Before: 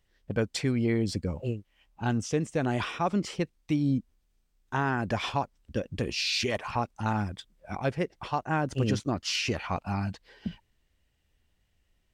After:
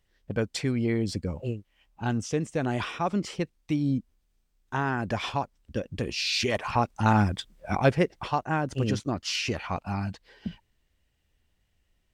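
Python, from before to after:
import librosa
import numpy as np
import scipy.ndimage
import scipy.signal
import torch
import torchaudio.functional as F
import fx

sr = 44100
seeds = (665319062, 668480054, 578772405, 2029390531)

y = fx.gain(x, sr, db=fx.line((6.17, 0.0), (7.21, 8.0), (7.83, 8.0), (8.62, 0.0)))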